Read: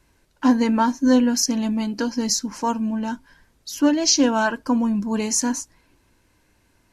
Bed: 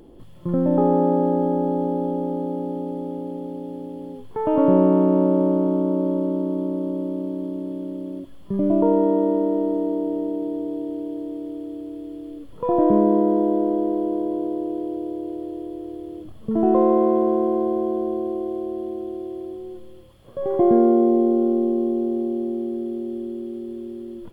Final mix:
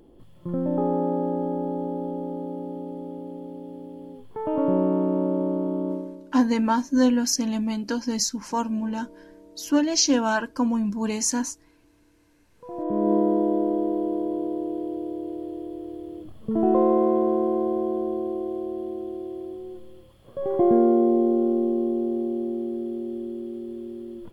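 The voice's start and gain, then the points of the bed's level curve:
5.90 s, -3.0 dB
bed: 5.92 s -6 dB
6.37 s -29 dB
12.37 s -29 dB
13.12 s -2.5 dB

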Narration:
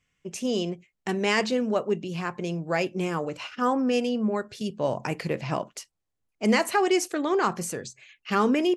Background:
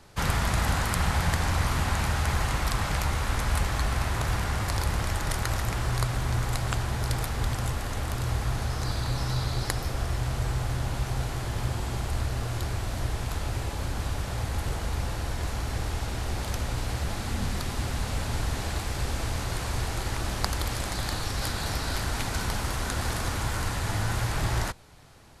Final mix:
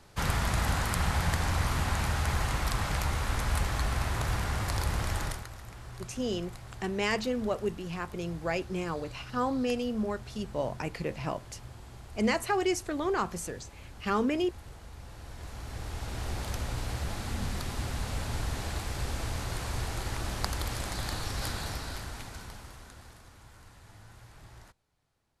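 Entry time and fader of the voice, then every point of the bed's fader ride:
5.75 s, -5.5 dB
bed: 5.24 s -3 dB
5.50 s -17 dB
14.97 s -17 dB
16.24 s -4 dB
21.53 s -4 dB
23.27 s -24.5 dB

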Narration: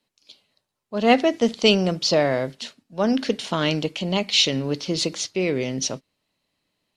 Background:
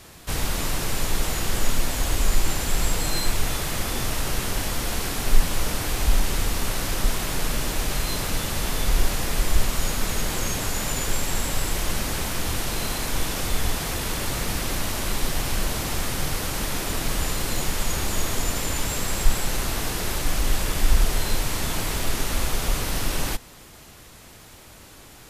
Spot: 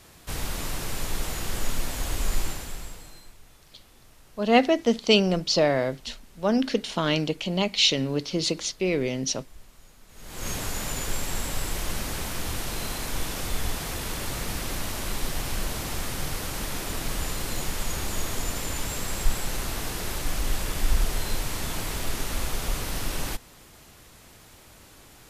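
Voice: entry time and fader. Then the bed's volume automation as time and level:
3.45 s, -2.0 dB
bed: 2.42 s -5.5 dB
3.37 s -28.5 dB
10.07 s -28.5 dB
10.48 s -4.5 dB

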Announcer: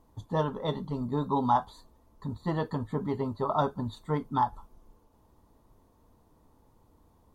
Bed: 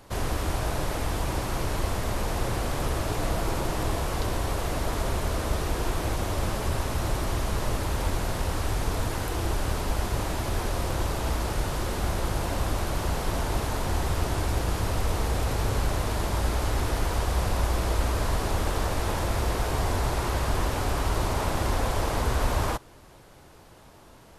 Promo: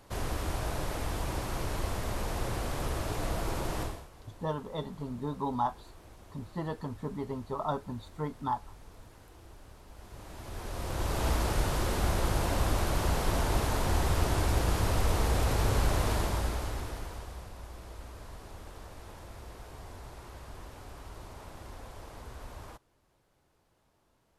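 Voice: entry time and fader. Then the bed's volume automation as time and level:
4.10 s, -5.5 dB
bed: 3.82 s -5.5 dB
4.10 s -25 dB
9.86 s -25 dB
11.23 s -1 dB
16.13 s -1 dB
17.52 s -20 dB

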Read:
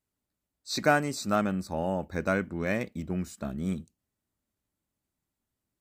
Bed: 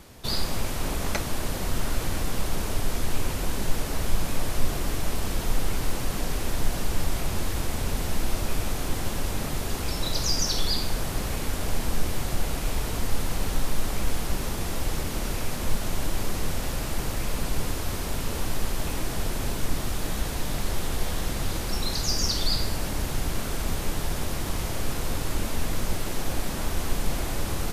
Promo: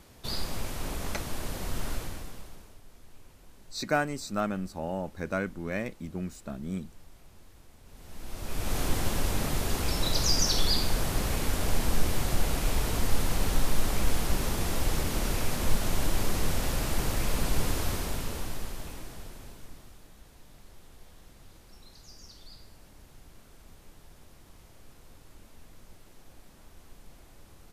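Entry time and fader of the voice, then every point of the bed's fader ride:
3.05 s, -3.5 dB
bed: 1.93 s -6 dB
2.81 s -27 dB
7.82 s -27 dB
8.77 s 0 dB
17.84 s 0 dB
20.10 s -25 dB

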